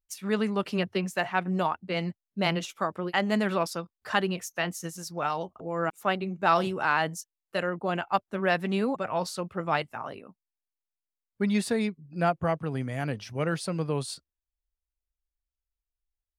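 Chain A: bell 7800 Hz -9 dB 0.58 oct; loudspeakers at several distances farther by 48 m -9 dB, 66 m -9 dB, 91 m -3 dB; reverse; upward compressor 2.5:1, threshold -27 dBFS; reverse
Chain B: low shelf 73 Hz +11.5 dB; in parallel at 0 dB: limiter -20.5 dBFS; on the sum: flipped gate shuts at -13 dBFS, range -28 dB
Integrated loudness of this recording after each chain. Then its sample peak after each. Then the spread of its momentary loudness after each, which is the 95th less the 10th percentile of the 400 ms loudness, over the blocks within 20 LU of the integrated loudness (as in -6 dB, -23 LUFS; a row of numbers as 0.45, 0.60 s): -27.0, -30.0 LUFS; -8.5, -11.0 dBFS; 7, 12 LU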